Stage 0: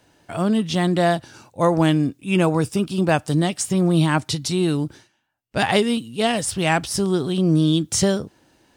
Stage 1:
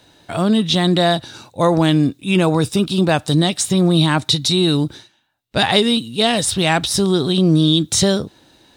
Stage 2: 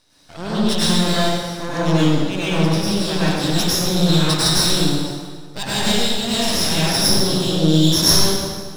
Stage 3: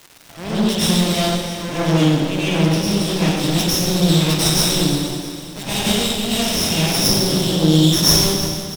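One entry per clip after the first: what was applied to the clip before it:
parametric band 3,800 Hz +14 dB 0.23 octaves; in parallel at +2.5 dB: brickwall limiter −13.5 dBFS, peak gain reduction 11.5 dB; on the sum: level −2 dB
low-pass with resonance 5,400 Hz, resonance Q 9.4; half-wave rectification; convolution reverb RT60 1.7 s, pre-delay 88 ms, DRR −9.5 dB; level −10.5 dB
lower of the sound and its delayed copy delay 0.34 ms; surface crackle 520 per second −32 dBFS; repeating echo 332 ms, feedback 52%, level −13.5 dB; level +1.5 dB

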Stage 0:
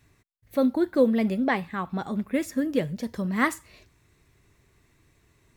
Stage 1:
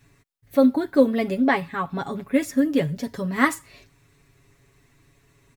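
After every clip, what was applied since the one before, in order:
comb filter 7.2 ms, depth 75%
level +2 dB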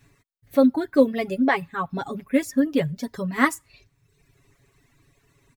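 reverb reduction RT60 0.89 s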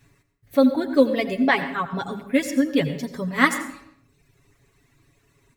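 dynamic equaliser 3,400 Hz, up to +7 dB, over −41 dBFS, Q 0.79
on a send at −10 dB: convolution reverb RT60 0.75 s, pre-delay 77 ms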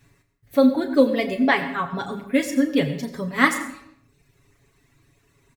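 double-tracking delay 35 ms −10.5 dB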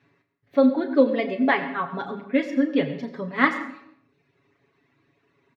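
high-pass filter 210 Hz 12 dB per octave
high-frequency loss of the air 260 metres

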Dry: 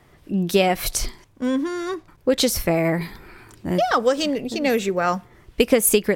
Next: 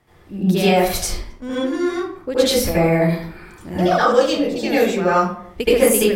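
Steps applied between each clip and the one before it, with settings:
convolution reverb RT60 0.60 s, pre-delay 70 ms, DRR −10.5 dB
level −7.5 dB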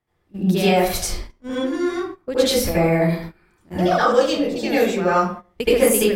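noise gate −29 dBFS, range −17 dB
level −1.5 dB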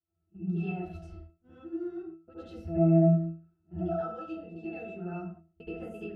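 resonances in every octave E, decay 0.35 s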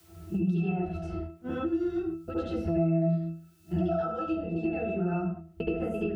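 multiband upward and downward compressor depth 100%
level +4.5 dB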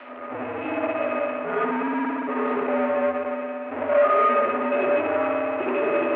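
spring reverb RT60 2.1 s, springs 57 ms, chirp 50 ms, DRR −1 dB
power curve on the samples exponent 0.5
single-sideband voice off tune −82 Hz 490–2,500 Hz
level +4.5 dB

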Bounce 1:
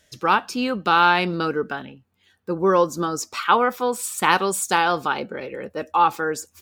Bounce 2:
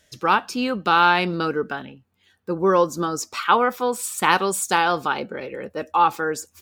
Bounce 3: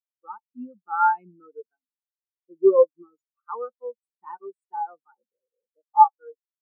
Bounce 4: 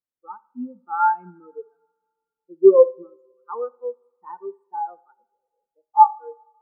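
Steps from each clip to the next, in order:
no processing that can be heard
every bin expanded away from the loudest bin 4 to 1; level −2 dB
tilt shelving filter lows +6.5 dB, about 1,100 Hz; coupled-rooms reverb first 0.55 s, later 1.9 s, from −20 dB, DRR 17 dB

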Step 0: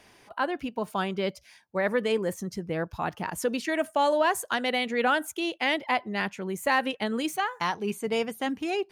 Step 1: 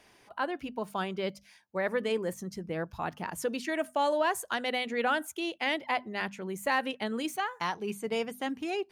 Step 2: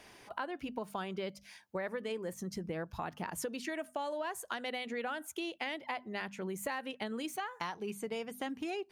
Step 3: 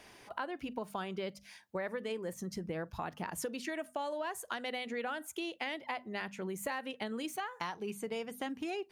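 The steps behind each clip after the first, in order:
mains-hum notches 50/100/150/200/250 Hz; level −4 dB
downward compressor 6 to 1, threshold −40 dBFS, peak gain reduction 15.5 dB; level +4 dB
convolution reverb, pre-delay 38 ms, DRR 24.5 dB

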